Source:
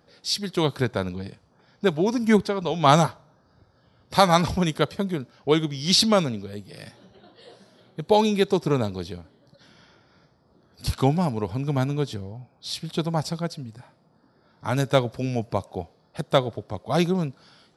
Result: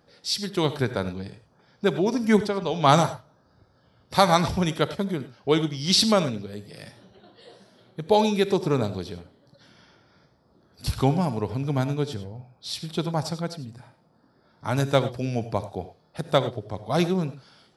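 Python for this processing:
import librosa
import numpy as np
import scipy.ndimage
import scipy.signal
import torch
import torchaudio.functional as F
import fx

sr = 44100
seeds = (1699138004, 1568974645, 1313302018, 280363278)

y = fx.rev_gated(x, sr, seeds[0], gate_ms=120, shape='rising', drr_db=12.0)
y = y * 10.0 ** (-1.0 / 20.0)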